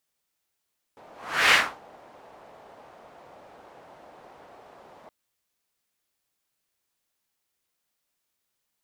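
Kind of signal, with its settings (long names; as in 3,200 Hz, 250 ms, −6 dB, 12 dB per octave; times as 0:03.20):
pass-by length 4.12 s, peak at 0:00.55, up 0.43 s, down 0.30 s, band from 700 Hz, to 2,100 Hz, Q 1.8, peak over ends 32.5 dB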